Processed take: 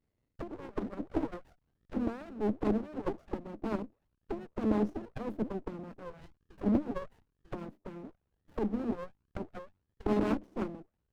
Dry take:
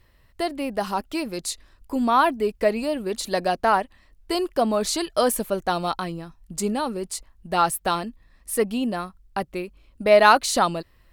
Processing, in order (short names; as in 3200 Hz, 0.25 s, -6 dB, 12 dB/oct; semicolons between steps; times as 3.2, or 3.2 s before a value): half-waves squared off; in parallel at -11 dB: requantised 6-bit, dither none; on the sum: auto-wah 210–1600 Hz, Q 17, down, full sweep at -15.5 dBFS; formant shift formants +6 st; running maximum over 33 samples